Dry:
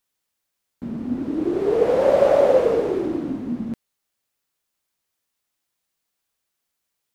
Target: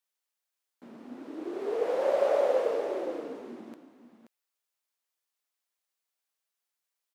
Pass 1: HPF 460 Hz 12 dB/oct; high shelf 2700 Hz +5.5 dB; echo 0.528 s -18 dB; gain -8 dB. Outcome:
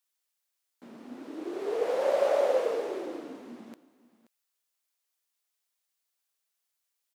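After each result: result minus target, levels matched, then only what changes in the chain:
echo-to-direct -8 dB; 4000 Hz band +3.0 dB
change: echo 0.528 s -10 dB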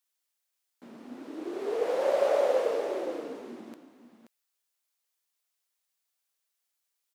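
4000 Hz band +3.0 dB
remove: high shelf 2700 Hz +5.5 dB

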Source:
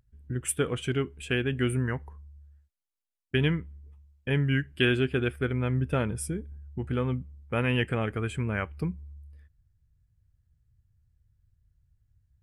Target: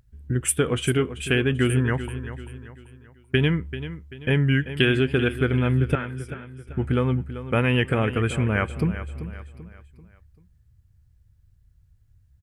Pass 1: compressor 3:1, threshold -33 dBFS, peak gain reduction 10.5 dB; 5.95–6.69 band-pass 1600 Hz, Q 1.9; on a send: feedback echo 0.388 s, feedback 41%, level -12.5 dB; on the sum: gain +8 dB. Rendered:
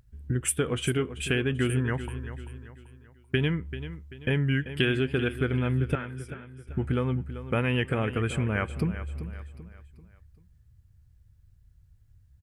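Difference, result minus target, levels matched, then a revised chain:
compressor: peak gain reduction +5.5 dB
compressor 3:1, threshold -25 dBFS, peak gain reduction 5 dB; 5.95–6.69 band-pass 1600 Hz, Q 1.9; on a send: feedback echo 0.388 s, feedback 41%, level -12.5 dB; on the sum: gain +8 dB

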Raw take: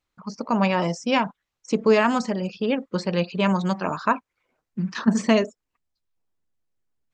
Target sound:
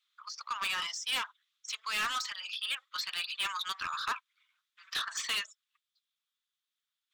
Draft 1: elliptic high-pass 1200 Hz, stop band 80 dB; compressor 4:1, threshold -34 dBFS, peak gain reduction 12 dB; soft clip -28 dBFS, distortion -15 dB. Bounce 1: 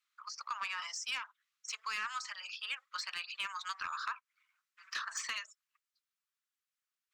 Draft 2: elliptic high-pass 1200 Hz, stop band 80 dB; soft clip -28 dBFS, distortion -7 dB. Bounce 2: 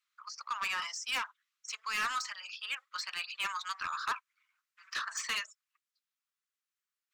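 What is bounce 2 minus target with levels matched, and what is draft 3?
4000 Hz band -3.0 dB
elliptic high-pass 1200 Hz, stop band 80 dB; bell 3500 Hz +14 dB 0.43 oct; soft clip -28 dBFS, distortion -5 dB

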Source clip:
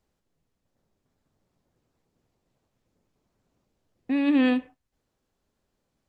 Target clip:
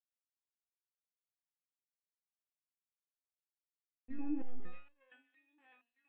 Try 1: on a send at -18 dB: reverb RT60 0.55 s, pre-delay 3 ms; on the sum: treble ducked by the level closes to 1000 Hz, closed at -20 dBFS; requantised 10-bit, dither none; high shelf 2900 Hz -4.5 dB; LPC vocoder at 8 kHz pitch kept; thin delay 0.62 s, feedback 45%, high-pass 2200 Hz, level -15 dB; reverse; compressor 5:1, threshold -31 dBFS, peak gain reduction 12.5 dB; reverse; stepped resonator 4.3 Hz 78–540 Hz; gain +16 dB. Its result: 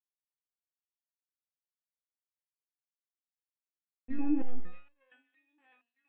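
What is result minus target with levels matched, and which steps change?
compressor: peak gain reduction -8.5 dB
change: compressor 5:1, threshold -41.5 dBFS, peak gain reduction 21 dB

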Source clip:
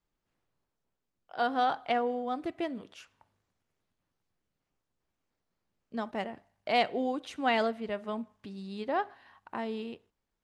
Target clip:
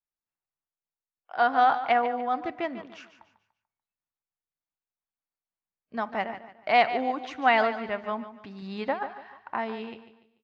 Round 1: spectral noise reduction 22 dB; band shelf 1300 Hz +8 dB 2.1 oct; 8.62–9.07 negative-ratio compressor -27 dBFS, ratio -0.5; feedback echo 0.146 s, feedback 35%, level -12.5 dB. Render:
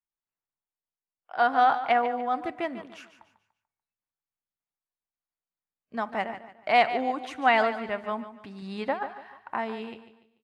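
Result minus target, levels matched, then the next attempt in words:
8000 Hz band +4.0 dB
spectral noise reduction 22 dB; steep low-pass 6400 Hz 36 dB/oct; band shelf 1300 Hz +8 dB 2.1 oct; 8.62–9.07 negative-ratio compressor -27 dBFS, ratio -0.5; feedback echo 0.146 s, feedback 35%, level -12.5 dB

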